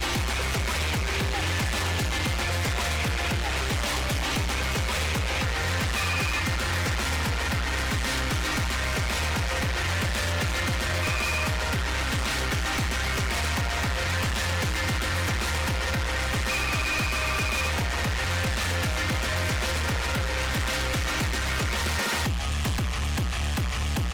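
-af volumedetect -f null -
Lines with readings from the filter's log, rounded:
mean_volume: -26.3 dB
max_volume: -21.0 dB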